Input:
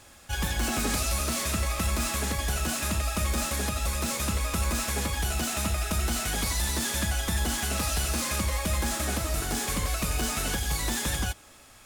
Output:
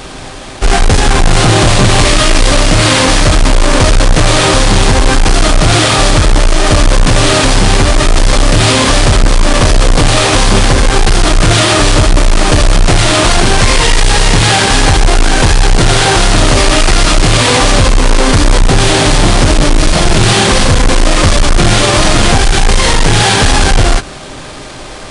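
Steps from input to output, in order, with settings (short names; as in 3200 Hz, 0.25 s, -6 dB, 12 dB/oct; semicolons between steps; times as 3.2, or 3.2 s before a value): half-waves squared off; wide varispeed 0.472×; maximiser +22.5 dB; gain -1 dB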